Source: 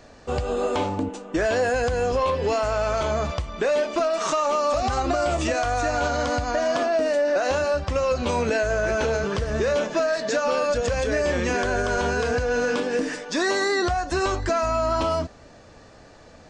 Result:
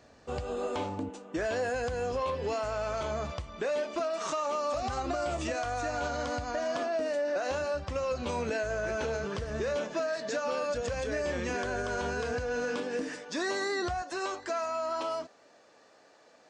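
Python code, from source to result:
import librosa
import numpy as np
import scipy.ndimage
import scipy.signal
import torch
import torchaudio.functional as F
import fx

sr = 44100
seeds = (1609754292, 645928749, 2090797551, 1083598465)

y = fx.highpass(x, sr, hz=fx.steps((0.0, 55.0), (14.02, 370.0)), slope=12)
y = y * librosa.db_to_amplitude(-9.0)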